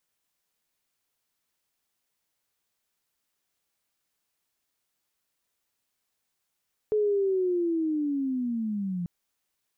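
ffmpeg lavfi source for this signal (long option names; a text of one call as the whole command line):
ffmpeg -f lavfi -i "aevalsrc='pow(10,(-21-7*t/2.14)/20)*sin(2*PI*(430*t-260*t*t/(2*2.14)))':duration=2.14:sample_rate=44100" out.wav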